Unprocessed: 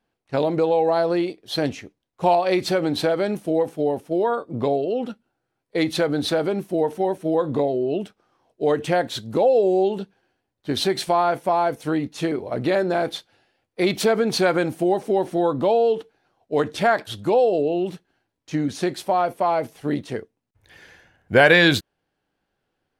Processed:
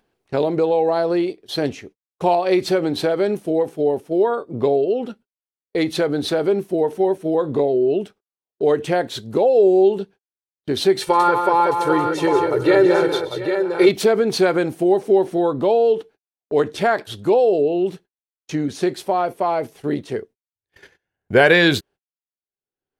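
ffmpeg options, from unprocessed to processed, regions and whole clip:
ffmpeg -i in.wav -filter_complex "[0:a]asettb=1/sr,asplit=3[link_01][link_02][link_03];[link_01]atrim=end=11.014[link_04];[link_02]atrim=start=11.01:end=13.89,asetpts=PTS-STARTPTS,afade=type=in:duration=0.004:curve=qsin,afade=type=out:start_time=2.876:duration=0.004:curve=qsin,equalizer=frequency=1300:width_type=o:width=1:gain=5.5,aecho=1:1:2.2:0.83,atrim=end_sample=127008,aecho=1:1:122|185|703|798:0.15|0.447|0.178|0.447,atrim=end_sample=127008[link_05];[link_03]atrim=start=13.886[link_06];[link_04][link_05]acrossfade=duration=0.004:curve1=hsin:curve2=qsin[link_07];[link_07][link_06]acrossfade=duration=0.004:curve1=qsin:curve2=hsin,agate=range=-51dB:threshold=-44dB:ratio=16:detection=peak,acompressor=mode=upward:threshold=-30dB:ratio=2.5,equalizer=frequency=400:width_type=o:width=0.31:gain=8" out.wav

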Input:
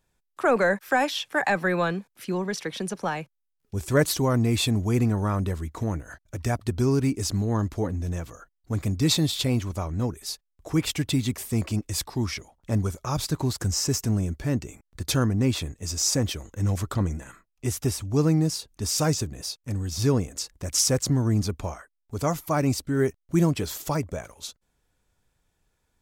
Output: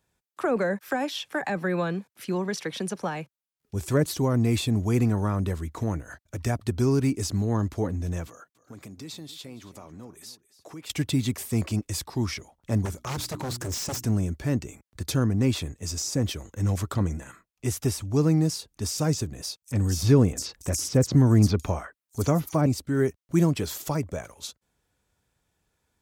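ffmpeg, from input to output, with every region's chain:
ffmpeg -i in.wav -filter_complex "[0:a]asettb=1/sr,asplit=3[link_01][link_02][link_03];[link_01]atrim=end=8.274[link_04];[link_02]atrim=start=8.27:end=10.9,asetpts=PTS-STARTPTS,afade=type=in:duration=0.004:curve=qsin,afade=type=out:start_time=2.626:duration=0.004:curve=qsin,highpass=180,acompressor=threshold=-43dB:ratio=3:attack=3.2:release=140:knee=1:detection=peak,aecho=1:1:277:0.141,atrim=end_sample=115983[link_05];[link_03]atrim=start=10.896[link_06];[link_04][link_05]acrossfade=duration=0.004:curve1=hsin:curve2=qsin[link_07];[link_07][link_06]acrossfade=duration=0.004:curve1=qsin:curve2=hsin,asettb=1/sr,asplit=3[link_08][link_09][link_10];[link_08]atrim=end=12.854[link_11];[link_09]atrim=start=12.85:end=14.03,asetpts=PTS-STARTPTS,afade=type=in:duration=0.004:curve=qsin,afade=type=out:start_time=1.176:duration=0.004:curve=qsin,bandreject=frequency=60:width_type=h:width=6,bandreject=frequency=120:width_type=h:width=6,bandreject=frequency=180:width_type=h:width=6,bandreject=frequency=240:width_type=h:width=6,bandreject=frequency=300:width_type=h:width=6,bandreject=frequency=360:width_type=h:width=6,aeval=exprs='0.0562*(abs(mod(val(0)/0.0562+3,4)-2)-1)':channel_layout=same[link_12];[link_10]atrim=start=14.026[link_13];[link_11][link_12]acrossfade=duration=0.004:curve1=hsin:curve2=qsin[link_14];[link_14][link_13]acrossfade=duration=0.004:curve1=qsin:curve2=hsin,asettb=1/sr,asplit=3[link_15][link_16][link_17];[link_15]atrim=end=19.624[link_18];[link_16]atrim=start=19.62:end=22.66,asetpts=PTS-STARTPTS,afade=type=in:duration=0.004:curve=qsin,afade=type=out:start_time=3.036:duration=0.004:curve=qsin,acontrast=28,acrossover=split=5100[link_19][link_20];[link_19]adelay=50[link_21];[link_21][link_20]amix=inputs=2:normalize=0,atrim=end_sample=134064[link_22];[link_17]atrim=start=22.656[link_23];[link_18][link_22]acrossfade=duration=0.004:curve1=hsin:curve2=qsin[link_24];[link_24][link_23]acrossfade=duration=0.004:curve1=qsin:curve2=hsin,highpass=55,acrossover=split=480[link_25][link_26];[link_26]acompressor=threshold=-29dB:ratio=6[link_27];[link_25][link_27]amix=inputs=2:normalize=0" out.wav

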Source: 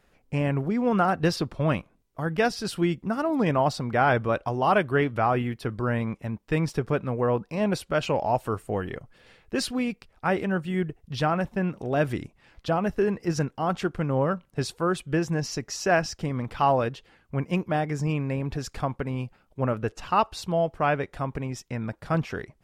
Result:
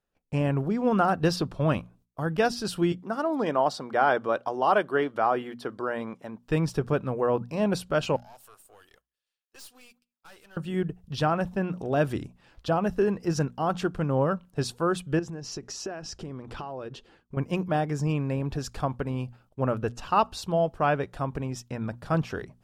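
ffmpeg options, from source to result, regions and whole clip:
ffmpeg -i in.wav -filter_complex "[0:a]asettb=1/sr,asplit=3[link_01][link_02][link_03];[link_01]atrim=end=2.924[link_04];[link_02]atrim=start=2.92:end=6.43,asetpts=PTS-STARTPTS,afade=type=in:duration=0.004:curve=qsin,afade=type=out:start_time=3.506:duration=0.004:curve=qsin,highpass=300,highshelf=frequency=8700:gain=-7,bandreject=frequency=2600:width=11[link_05];[link_03]atrim=start=6.426[link_06];[link_04][link_05]acrossfade=duration=0.004:curve1=hsin:curve2=qsin[link_07];[link_07][link_06]acrossfade=duration=0.004:curve1=qsin:curve2=hsin,asettb=1/sr,asplit=3[link_08][link_09][link_10];[link_08]atrim=end=8.164[link_11];[link_09]atrim=start=8.16:end=10.57,asetpts=PTS-STARTPTS,afade=type=in:duration=0.004:curve=qsin,afade=type=out:start_time=2.406:duration=0.004:curve=qsin,aderivative,aeval=exprs='(tanh(178*val(0)+0.6)-tanh(0.6))/178':channel_layout=same,aecho=1:1:205:0.075,atrim=end_sample=106281[link_12];[link_10]atrim=start=10.566[link_13];[link_11][link_12]acrossfade=duration=0.004:curve1=hsin:curve2=qsin[link_14];[link_14][link_13]acrossfade=duration=0.004:curve1=qsin:curve2=hsin,asettb=1/sr,asplit=3[link_15][link_16][link_17];[link_15]atrim=end=15.194[link_18];[link_16]atrim=start=15.19:end=17.37,asetpts=PTS-STARTPTS,afade=type=in:duration=0.004:curve=qsin,afade=type=out:start_time=2.176:duration=0.004:curve=qsin,lowpass=9200,acompressor=threshold=-33dB:ratio=16:attack=3.2:release=140:knee=1:detection=peak,equalizer=frequency=370:width_type=o:width=0.55:gain=6.5[link_19];[link_17]atrim=start=17.366[link_20];[link_18][link_19]acrossfade=duration=0.004:curve1=hsin:curve2=qsin[link_21];[link_21][link_20]acrossfade=duration=0.004:curve1=qsin:curve2=hsin,agate=range=-20dB:threshold=-58dB:ratio=16:detection=peak,equalizer=frequency=2100:width_type=o:width=0.39:gain=-7.5,bandreject=frequency=60:width_type=h:width=6,bandreject=frequency=120:width_type=h:width=6,bandreject=frequency=180:width_type=h:width=6,bandreject=frequency=240:width_type=h:width=6" out.wav

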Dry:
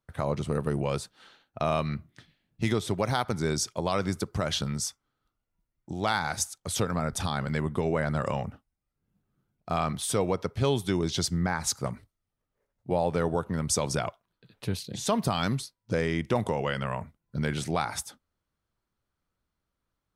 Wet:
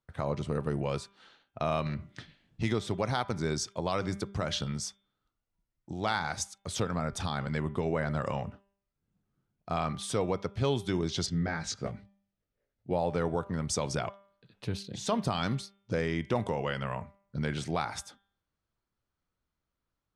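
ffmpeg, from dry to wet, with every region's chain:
ffmpeg -i in.wav -filter_complex "[0:a]asettb=1/sr,asplit=3[link_01][link_02][link_03];[link_01]atrim=end=1.864[link_04];[link_02]atrim=start=1.86:end=2.63,asetpts=PTS-STARTPTS,afade=type=in:duration=0.004:curve=qsin,afade=type=out:start_time=0.766:duration=0.004:curve=qsin,equalizer=frequency=11000:width_type=o:width=0.32:gain=-3,aeval=exprs='0.133*sin(PI/2*2*val(0)/0.133)':channel_layout=same,acompressor=threshold=-29dB:ratio=4:attack=3.2:release=140:knee=1:detection=peak[link_05];[link_03]atrim=start=2.626[link_06];[link_04][link_05]acrossfade=duration=0.004:curve1=hsin:curve2=qsin[link_07];[link_07][link_06]acrossfade=duration=0.004:curve1=qsin:curve2=hsin,asettb=1/sr,asplit=3[link_08][link_09][link_10];[link_08]atrim=end=11.264[link_11];[link_09]atrim=start=11.26:end=12.93,asetpts=PTS-STARTPTS,afade=type=in:duration=0.004:curve=qsin,afade=type=out:start_time=1.666:duration=0.004:curve=qsin,lowpass=5500,equalizer=frequency=1000:width=2.4:gain=-10,asplit=2[link_12][link_13];[link_13]adelay=19,volume=-4dB[link_14];[link_12][link_14]amix=inputs=2:normalize=0,atrim=end_sample=73647[link_15];[link_10]atrim=start=12.926[link_16];[link_11][link_15]acrossfade=duration=0.004:curve1=hsin:curve2=qsin[link_17];[link_17][link_16]acrossfade=duration=0.004:curve1=qsin:curve2=hsin,lowpass=7200,bandreject=frequency=198.1:width_type=h:width=4,bandreject=frequency=396.2:width_type=h:width=4,bandreject=frequency=594.3:width_type=h:width=4,bandreject=frequency=792.4:width_type=h:width=4,bandreject=frequency=990.5:width_type=h:width=4,bandreject=frequency=1188.6:width_type=h:width=4,bandreject=frequency=1386.7:width_type=h:width=4,bandreject=frequency=1584.8:width_type=h:width=4,bandreject=frequency=1782.9:width_type=h:width=4,bandreject=frequency=1981:width_type=h:width=4,bandreject=frequency=2179.1:width_type=h:width=4,bandreject=frequency=2377.2:width_type=h:width=4,bandreject=frequency=2575.3:width_type=h:width=4,bandreject=frequency=2773.4:width_type=h:width=4,bandreject=frequency=2971.5:width_type=h:width=4,bandreject=frequency=3169.6:width_type=h:width=4,bandreject=frequency=3367.7:width_type=h:width=4,bandreject=frequency=3565.8:width_type=h:width=4,volume=-3dB" out.wav

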